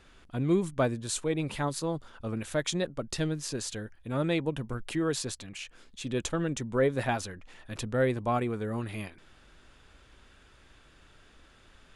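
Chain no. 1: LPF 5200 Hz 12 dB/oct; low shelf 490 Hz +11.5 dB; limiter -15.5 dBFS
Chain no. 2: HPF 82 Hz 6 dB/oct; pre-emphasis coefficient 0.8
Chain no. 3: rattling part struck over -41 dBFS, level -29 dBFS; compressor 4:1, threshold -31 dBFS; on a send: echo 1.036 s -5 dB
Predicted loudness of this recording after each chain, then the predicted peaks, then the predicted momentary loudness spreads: -27.0, -41.5, -35.5 LUFS; -15.5, -19.5, -19.5 dBFS; 9, 12, 6 LU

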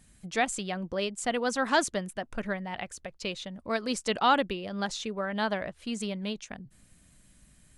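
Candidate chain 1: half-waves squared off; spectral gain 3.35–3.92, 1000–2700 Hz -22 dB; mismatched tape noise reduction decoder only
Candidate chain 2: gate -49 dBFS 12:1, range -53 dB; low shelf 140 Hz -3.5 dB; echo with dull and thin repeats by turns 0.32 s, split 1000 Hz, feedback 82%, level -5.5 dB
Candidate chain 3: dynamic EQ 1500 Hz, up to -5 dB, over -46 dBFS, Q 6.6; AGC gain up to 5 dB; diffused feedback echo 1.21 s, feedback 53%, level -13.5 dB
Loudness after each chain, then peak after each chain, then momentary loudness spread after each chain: -26.5, -30.0, -26.5 LUFS; -10.5, -10.0, -6.5 dBFS; 12, 12, 16 LU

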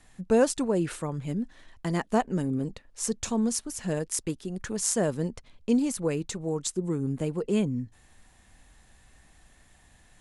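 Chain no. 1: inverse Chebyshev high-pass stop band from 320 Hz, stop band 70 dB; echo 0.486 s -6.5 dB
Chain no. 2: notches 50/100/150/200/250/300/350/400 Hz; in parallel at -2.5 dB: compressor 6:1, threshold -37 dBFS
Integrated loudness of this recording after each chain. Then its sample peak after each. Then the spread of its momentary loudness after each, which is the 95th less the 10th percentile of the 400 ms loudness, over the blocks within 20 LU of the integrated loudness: -35.5, -28.0 LUFS; -9.5, -7.0 dBFS; 16, 9 LU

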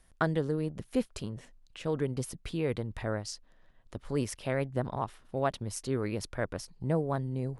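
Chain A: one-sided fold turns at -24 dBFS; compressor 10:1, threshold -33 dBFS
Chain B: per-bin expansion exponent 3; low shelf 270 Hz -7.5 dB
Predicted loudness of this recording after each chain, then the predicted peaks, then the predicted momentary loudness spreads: -40.5, -43.0 LUFS; -19.0, -18.0 dBFS; 5, 12 LU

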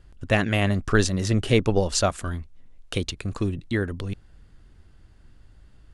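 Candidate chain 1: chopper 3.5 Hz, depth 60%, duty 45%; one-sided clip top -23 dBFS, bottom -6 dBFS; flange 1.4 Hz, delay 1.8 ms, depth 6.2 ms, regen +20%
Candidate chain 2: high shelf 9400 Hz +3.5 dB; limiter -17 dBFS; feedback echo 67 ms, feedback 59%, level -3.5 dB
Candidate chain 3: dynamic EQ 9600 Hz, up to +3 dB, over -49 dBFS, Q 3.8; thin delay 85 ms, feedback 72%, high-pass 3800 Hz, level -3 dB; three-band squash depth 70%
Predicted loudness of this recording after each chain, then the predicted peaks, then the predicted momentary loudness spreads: -32.0, -27.0, -25.0 LUFS; -10.5, -11.5, -3.5 dBFS; 12, 11, 18 LU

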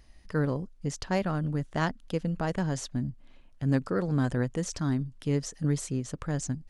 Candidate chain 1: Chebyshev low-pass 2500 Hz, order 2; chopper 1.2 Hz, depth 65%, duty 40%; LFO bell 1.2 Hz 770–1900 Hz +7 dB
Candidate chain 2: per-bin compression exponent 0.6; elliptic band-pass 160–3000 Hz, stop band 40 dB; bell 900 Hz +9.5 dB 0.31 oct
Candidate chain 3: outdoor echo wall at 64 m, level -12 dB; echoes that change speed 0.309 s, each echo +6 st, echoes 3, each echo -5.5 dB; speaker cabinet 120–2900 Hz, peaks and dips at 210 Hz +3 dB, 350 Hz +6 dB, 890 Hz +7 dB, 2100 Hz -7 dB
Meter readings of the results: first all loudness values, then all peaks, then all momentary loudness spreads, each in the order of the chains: -34.5, -29.0, -28.5 LUFS; -13.0, -9.5, -12.0 dBFS; 13, 7, 6 LU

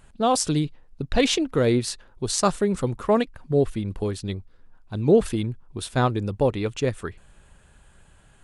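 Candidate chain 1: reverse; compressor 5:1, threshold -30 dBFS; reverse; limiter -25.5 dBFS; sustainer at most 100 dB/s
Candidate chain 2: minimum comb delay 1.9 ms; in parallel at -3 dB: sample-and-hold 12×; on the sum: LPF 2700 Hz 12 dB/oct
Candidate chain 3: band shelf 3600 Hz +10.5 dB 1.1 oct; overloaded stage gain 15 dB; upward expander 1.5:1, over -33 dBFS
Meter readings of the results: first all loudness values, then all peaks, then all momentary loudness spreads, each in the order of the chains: -36.0, -21.5, -25.5 LUFS; -24.5, -2.5, -15.0 dBFS; 17, 13, 14 LU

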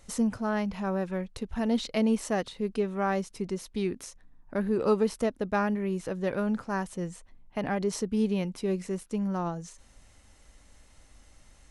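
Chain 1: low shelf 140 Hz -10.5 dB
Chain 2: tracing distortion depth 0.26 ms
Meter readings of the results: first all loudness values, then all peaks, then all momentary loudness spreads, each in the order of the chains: -32.0, -30.5 LUFS; -14.5, -13.5 dBFS; 9, 9 LU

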